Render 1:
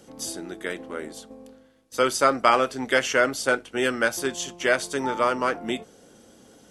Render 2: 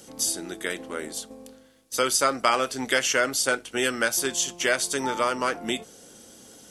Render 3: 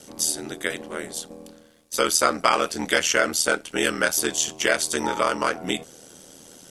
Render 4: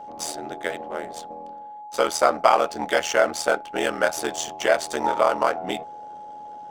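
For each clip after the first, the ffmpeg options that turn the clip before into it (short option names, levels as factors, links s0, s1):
-af "highshelf=f=3300:g=11.5,acompressor=threshold=0.0562:ratio=1.5"
-af "aeval=exprs='val(0)*sin(2*PI*40*n/s)':c=same,volume=1.78"
-af "adynamicsmooth=sensitivity=7:basefreq=2200,equalizer=f=730:w=1.3:g=14.5,aeval=exprs='val(0)+0.0282*sin(2*PI*840*n/s)':c=same,volume=0.531"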